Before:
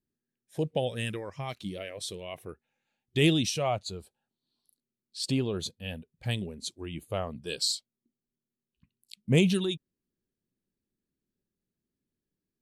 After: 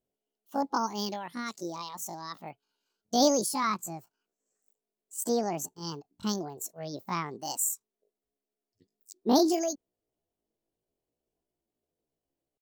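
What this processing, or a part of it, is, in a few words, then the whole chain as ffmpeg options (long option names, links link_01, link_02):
chipmunk voice: -af "asetrate=78577,aresample=44100,atempo=0.561231"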